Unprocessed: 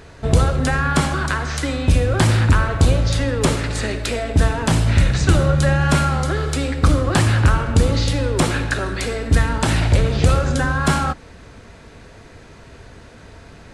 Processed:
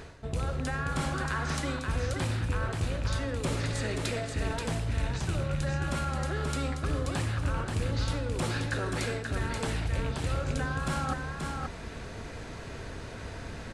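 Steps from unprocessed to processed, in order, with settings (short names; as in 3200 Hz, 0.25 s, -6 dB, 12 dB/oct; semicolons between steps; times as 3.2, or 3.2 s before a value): rattling part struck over -11 dBFS, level -17 dBFS; reverse; compressor 6:1, threshold -30 dBFS, peak gain reduction 19.5 dB; reverse; echo 0.531 s -4.5 dB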